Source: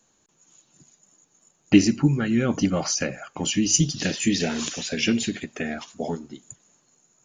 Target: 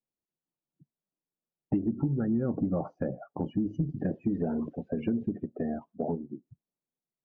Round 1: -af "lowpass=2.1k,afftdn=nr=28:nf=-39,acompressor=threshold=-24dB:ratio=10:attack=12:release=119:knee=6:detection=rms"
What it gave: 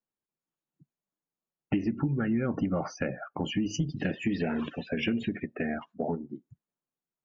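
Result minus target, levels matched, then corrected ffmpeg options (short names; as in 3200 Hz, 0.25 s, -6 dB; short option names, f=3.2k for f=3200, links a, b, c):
2000 Hz band +15.5 dB
-af "lowpass=800,afftdn=nr=28:nf=-39,acompressor=threshold=-24dB:ratio=10:attack=12:release=119:knee=6:detection=rms"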